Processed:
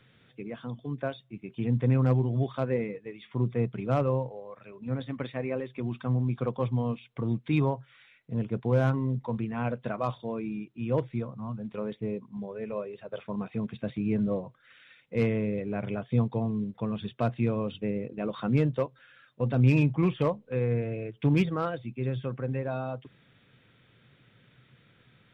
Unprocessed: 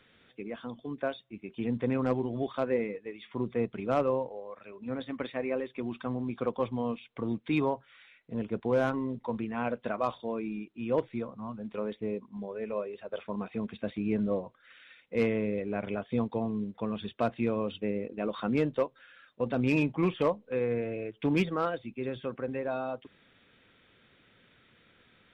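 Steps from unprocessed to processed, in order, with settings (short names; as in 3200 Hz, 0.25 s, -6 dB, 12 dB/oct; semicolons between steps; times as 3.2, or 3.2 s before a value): bell 130 Hz +15 dB 0.67 oct; gain -1 dB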